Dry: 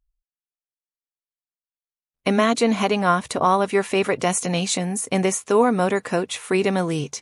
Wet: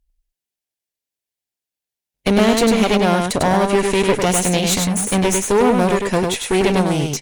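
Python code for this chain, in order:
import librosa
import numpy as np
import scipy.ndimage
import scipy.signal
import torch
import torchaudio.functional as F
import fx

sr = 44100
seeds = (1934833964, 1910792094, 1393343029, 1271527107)

y = fx.peak_eq(x, sr, hz=1200.0, db=-13.5, octaves=0.46)
y = fx.clip_asym(y, sr, top_db=-30.0, bottom_db=-13.0)
y = y + 10.0 ** (-4.0 / 20.0) * np.pad(y, (int(100 * sr / 1000.0), 0))[:len(y)]
y = y * 10.0 ** (7.5 / 20.0)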